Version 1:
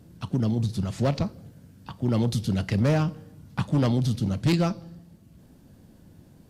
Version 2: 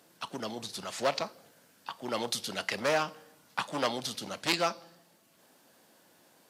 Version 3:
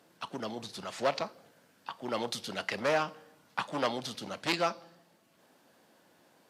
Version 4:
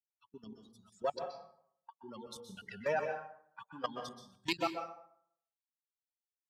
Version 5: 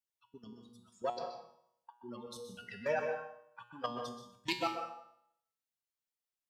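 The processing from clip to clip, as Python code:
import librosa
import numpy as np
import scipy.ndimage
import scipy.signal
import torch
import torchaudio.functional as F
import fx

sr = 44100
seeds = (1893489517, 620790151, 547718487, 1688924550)

y1 = scipy.signal.sosfilt(scipy.signal.butter(2, 720.0, 'highpass', fs=sr, output='sos'), x)
y1 = y1 * librosa.db_to_amplitude(4.0)
y2 = fx.high_shelf(y1, sr, hz=4900.0, db=-9.0)
y3 = fx.bin_expand(y2, sr, power=3.0)
y3 = fx.level_steps(y3, sr, step_db=17)
y3 = fx.rev_plate(y3, sr, seeds[0], rt60_s=0.66, hf_ratio=0.6, predelay_ms=115, drr_db=5.0)
y3 = y3 * librosa.db_to_amplitude(3.0)
y4 = fx.comb_fb(y3, sr, f0_hz=120.0, decay_s=0.68, harmonics='all', damping=0.0, mix_pct=80)
y4 = y4 * librosa.db_to_amplitude(10.5)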